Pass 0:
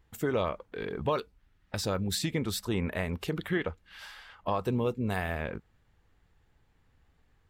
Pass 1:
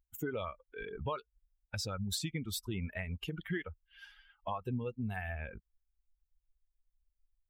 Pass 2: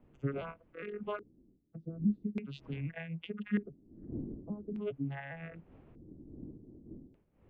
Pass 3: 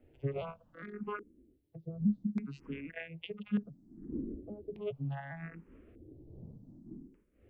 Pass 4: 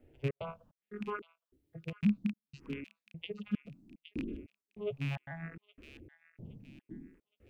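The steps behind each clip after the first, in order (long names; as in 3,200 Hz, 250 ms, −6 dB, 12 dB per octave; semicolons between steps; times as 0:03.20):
spectral dynamics exaggerated over time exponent 2; dynamic equaliser 510 Hz, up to −5 dB, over −44 dBFS, Q 1; downward compressor 2 to 1, threshold −46 dBFS, peak gain reduction 10 dB; level +6 dB
vocoder with an arpeggio as carrier minor triad, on C#3, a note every 408 ms; wind on the microphone 290 Hz −56 dBFS; auto-filter low-pass square 0.42 Hz 310–2,700 Hz; level +1 dB
frequency shifter mixed with the dry sound +0.67 Hz; level +3 dB
loose part that buzzes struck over −37 dBFS, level −32 dBFS; gate pattern "xxx.xxx..xxx...x" 148 BPM −60 dB; delay with a high-pass on its return 817 ms, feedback 38%, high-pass 2,700 Hz, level −8 dB; level +1 dB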